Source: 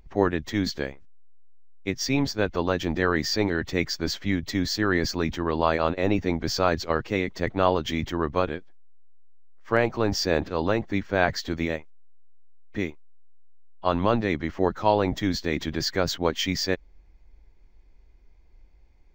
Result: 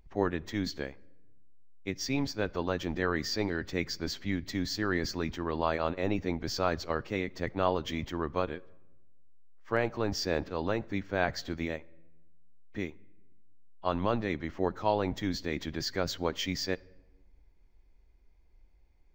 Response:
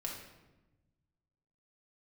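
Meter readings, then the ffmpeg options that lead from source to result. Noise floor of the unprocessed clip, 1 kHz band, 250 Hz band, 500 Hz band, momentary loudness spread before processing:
−54 dBFS, −7.0 dB, −7.0 dB, −7.0 dB, 7 LU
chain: -filter_complex "[0:a]asplit=2[link_01][link_02];[1:a]atrim=start_sample=2205,adelay=11[link_03];[link_02][link_03]afir=irnorm=-1:irlink=0,volume=-21dB[link_04];[link_01][link_04]amix=inputs=2:normalize=0,volume=-7dB"

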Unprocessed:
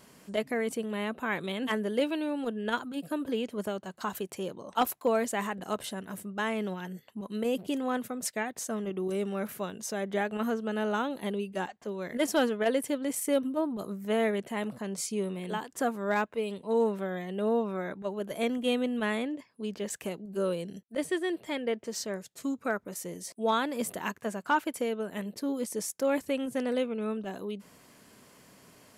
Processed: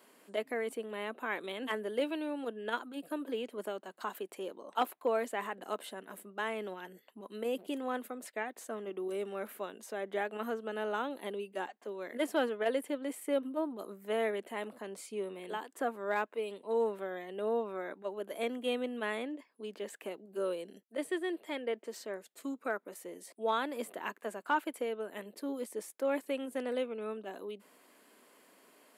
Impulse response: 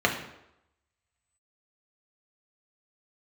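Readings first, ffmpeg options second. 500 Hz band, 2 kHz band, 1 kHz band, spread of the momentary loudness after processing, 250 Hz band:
−4.0 dB, −4.5 dB, −4.0 dB, 10 LU, −8.5 dB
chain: -filter_complex "[0:a]highpass=frequency=270:width=0.5412,highpass=frequency=270:width=1.3066,equalizer=frequency=5800:width_type=o:width=0.65:gain=-8.5,acrossover=split=3600[link_01][link_02];[link_02]alimiter=level_in=11.5dB:limit=-24dB:level=0:latency=1:release=372,volume=-11.5dB[link_03];[link_01][link_03]amix=inputs=2:normalize=0,volume=-4dB"

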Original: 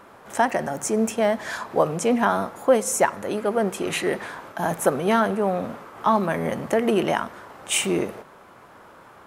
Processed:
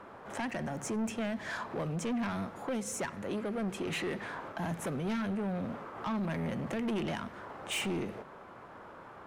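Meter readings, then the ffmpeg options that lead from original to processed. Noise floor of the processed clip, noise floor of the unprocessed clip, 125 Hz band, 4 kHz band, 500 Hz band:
−50 dBFS, −49 dBFS, −5.0 dB, −10.0 dB, −16.0 dB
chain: -filter_complex "[0:a]aemphasis=mode=reproduction:type=75kf,acrossover=split=260|1900[link_01][link_02][link_03];[link_02]acompressor=threshold=-35dB:ratio=4[link_04];[link_01][link_04][link_03]amix=inputs=3:normalize=0,asoftclip=type=tanh:threshold=-28.5dB,volume=-1dB"

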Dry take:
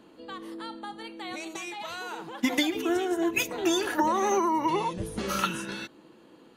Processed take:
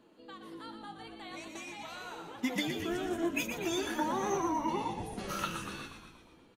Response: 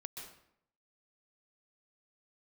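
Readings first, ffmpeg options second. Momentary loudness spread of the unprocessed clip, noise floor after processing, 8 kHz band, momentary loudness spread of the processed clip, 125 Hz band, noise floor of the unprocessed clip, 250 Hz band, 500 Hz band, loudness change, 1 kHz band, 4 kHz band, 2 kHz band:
14 LU, −61 dBFS, −7.0 dB, 15 LU, −3.0 dB, −55 dBFS, −6.5 dB, −7.5 dB, −7.0 dB, −7.5 dB, −7.0 dB, −6.5 dB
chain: -filter_complex "[0:a]flanger=delay=7.6:depth=6.4:regen=56:speed=1.2:shape=triangular,asplit=9[link_01][link_02][link_03][link_04][link_05][link_06][link_07][link_08][link_09];[link_02]adelay=119,afreqshift=-54,volume=-7dB[link_10];[link_03]adelay=238,afreqshift=-108,volume=-11.6dB[link_11];[link_04]adelay=357,afreqshift=-162,volume=-16.2dB[link_12];[link_05]adelay=476,afreqshift=-216,volume=-20.7dB[link_13];[link_06]adelay=595,afreqshift=-270,volume=-25.3dB[link_14];[link_07]adelay=714,afreqshift=-324,volume=-29.9dB[link_15];[link_08]adelay=833,afreqshift=-378,volume=-34.5dB[link_16];[link_09]adelay=952,afreqshift=-432,volume=-39.1dB[link_17];[link_01][link_10][link_11][link_12][link_13][link_14][link_15][link_16][link_17]amix=inputs=9:normalize=0,volume=-4dB"

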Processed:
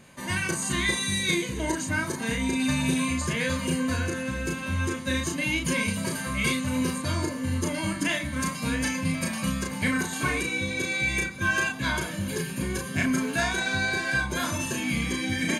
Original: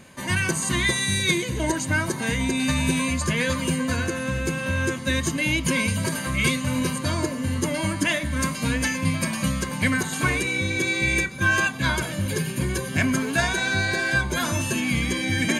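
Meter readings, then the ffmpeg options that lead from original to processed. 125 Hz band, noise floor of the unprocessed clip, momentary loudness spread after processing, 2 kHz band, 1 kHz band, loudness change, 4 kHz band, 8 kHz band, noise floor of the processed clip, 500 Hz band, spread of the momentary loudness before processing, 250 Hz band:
−5.0 dB, −31 dBFS, 4 LU, −3.5 dB, −3.0 dB, −3.5 dB, −3.5 dB, −3.5 dB, −35 dBFS, −4.0 dB, 5 LU, −2.5 dB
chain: -filter_complex "[0:a]asplit=2[link_01][link_02];[link_02]adelay=35,volume=-3.5dB[link_03];[link_01][link_03]amix=inputs=2:normalize=0,volume=-5dB"

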